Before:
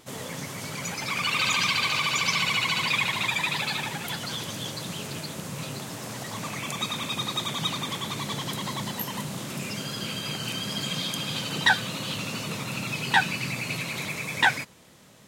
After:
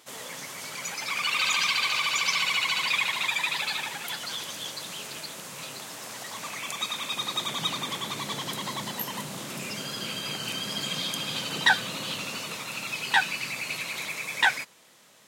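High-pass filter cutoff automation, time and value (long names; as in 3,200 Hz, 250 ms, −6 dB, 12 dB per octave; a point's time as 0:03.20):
high-pass filter 6 dB per octave
0:07.00 820 Hz
0:07.59 280 Hz
0:12.04 280 Hz
0:12.60 750 Hz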